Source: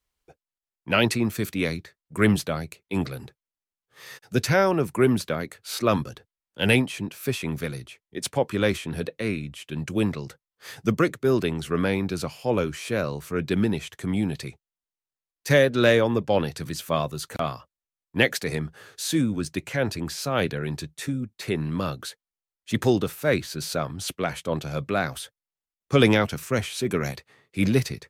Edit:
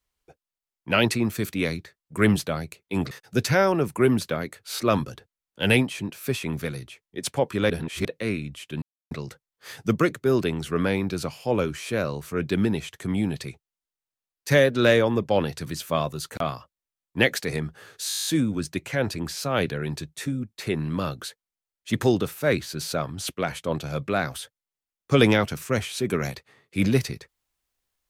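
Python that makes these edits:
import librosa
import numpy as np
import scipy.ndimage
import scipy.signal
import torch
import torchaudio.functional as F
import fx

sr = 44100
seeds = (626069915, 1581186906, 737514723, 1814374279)

y = fx.edit(x, sr, fx.cut(start_s=3.11, length_s=0.99),
    fx.reverse_span(start_s=8.69, length_s=0.35),
    fx.silence(start_s=9.81, length_s=0.29),
    fx.stutter(start_s=19.07, slice_s=0.02, count=10), tone=tone)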